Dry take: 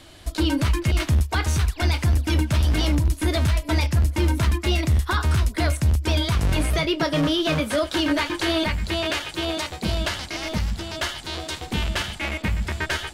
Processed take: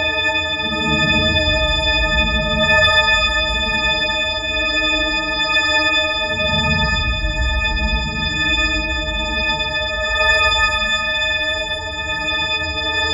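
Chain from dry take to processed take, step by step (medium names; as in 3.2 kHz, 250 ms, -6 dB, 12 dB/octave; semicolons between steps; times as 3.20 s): partials quantised in pitch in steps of 6 st; low-pass 2.7 kHz 12 dB/octave; on a send: two-band feedback delay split 760 Hz, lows 178 ms, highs 354 ms, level -4.5 dB; on the sum: Paulstretch 7.9×, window 0.10 s, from 9.72 s; trim +3.5 dB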